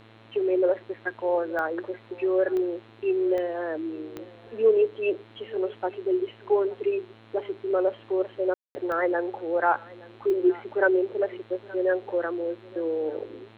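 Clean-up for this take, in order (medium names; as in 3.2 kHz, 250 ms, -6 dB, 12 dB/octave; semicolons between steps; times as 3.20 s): de-click; de-hum 111 Hz, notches 38; room tone fill 8.54–8.75 s; inverse comb 873 ms -21.5 dB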